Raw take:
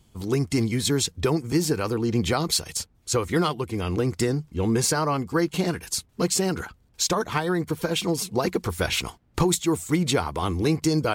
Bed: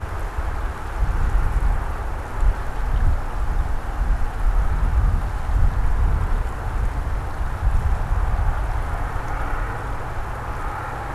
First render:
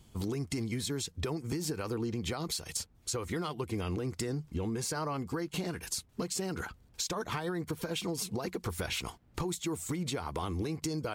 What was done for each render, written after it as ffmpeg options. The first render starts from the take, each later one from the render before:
-af "alimiter=limit=-21dB:level=0:latency=1:release=301,acompressor=threshold=-31dB:ratio=6"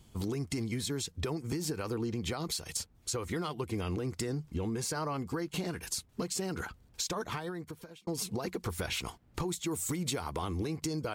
-filter_complex "[0:a]asettb=1/sr,asplit=3[a][b][c];[a]atrim=end=9.714[d];[b]atrim=start=9.71:end=10.3,asetpts=PTS-STARTPTS,afade=t=in:d=0.004:c=qsin,afade=t=out:st=0.586:d=0.004:c=qsin,highshelf=f=6k:g=8[e];[c]atrim=start=10.296[f];[d][e]acrossfade=d=0.004:c1=hsin:c2=qsin[g];[g][f]acrossfade=d=0.004:c1=qsin:c2=hsin,asplit=2[h][i];[h]atrim=end=8.07,asetpts=PTS-STARTPTS,afade=t=out:st=7.17:d=0.9[j];[i]atrim=start=8.07,asetpts=PTS-STARTPTS,afade=t=in:d=0.004:c=hsin[k];[j][k]concat=n=2:v=0:a=1"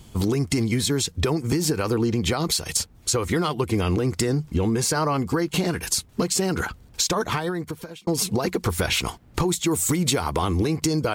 -af "volume=12dB"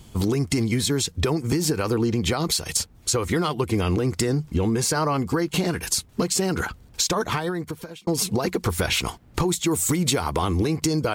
-af anull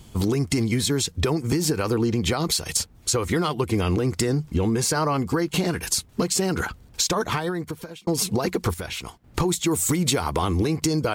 -filter_complex "[0:a]asplit=3[a][b][c];[a]atrim=end=8.742[d];[b]atrim=start=8.738:end=9.242,asetpts=PTS-STARTPTS,volume=-9dB[e];[c]atrim=start=9.238[f];[d][e]acrossfade=d=0.004:c1=hsin:c2=hsin[g];[g][f]acrossfade=d=0.004:c1=hsin:c2=hsin"

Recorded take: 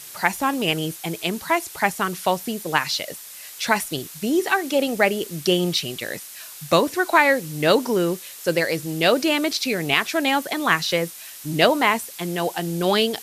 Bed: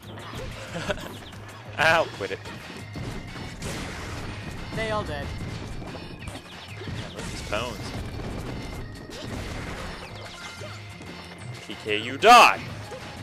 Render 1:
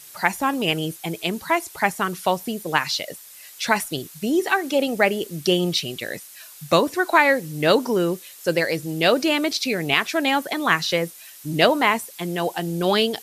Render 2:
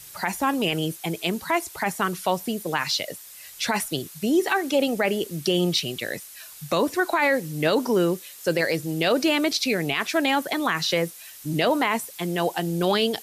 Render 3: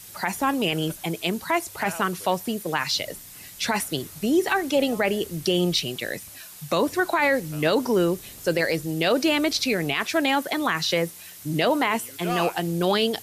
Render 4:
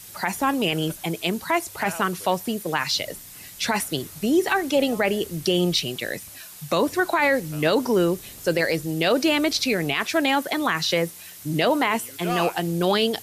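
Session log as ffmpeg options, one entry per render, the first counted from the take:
-af "afftdn=nr=6:nf=-40"
-filter_complex "[0:a]acrossover=split=110|1600|7300[a][b][c][d];[a]acompressor=mode=upward:threshold=-50dB:ratio=2.5[e];[e][b][c][d]amix=inputs=4:normalize=0,alimiter=limit=-11.5dB:level=0:latency=1:release=16"
-filter_complex "[1:a]volume=-17dB[a];[0:a][a]amix=inputs=2:normalize=0"
-af "volume=1dB"

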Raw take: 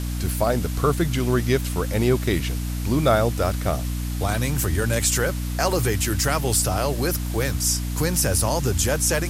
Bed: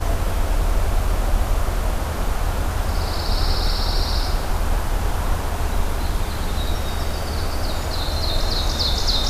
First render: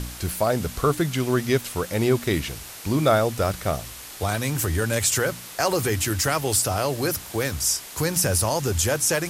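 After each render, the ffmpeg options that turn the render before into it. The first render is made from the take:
-af "bandreject=f=60:t=h:w=4,bandreject=f=120:t=h:w=4,bandreject=f=180:t=h:w=4,bandreject=f=240:t=h:w=4,bandreject=f=300:t=h:w=4"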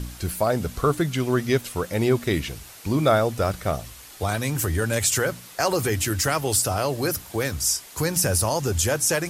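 -af "afftdn=nr=6:nf=-40"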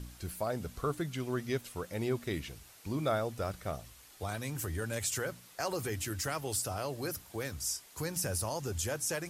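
-af "volume=-12.5dB"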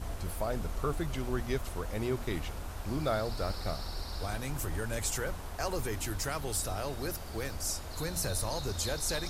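-filter_complex "[1:a]volume=-18dB[a];[0:a][a]amix=inputs=2:normalize=0"

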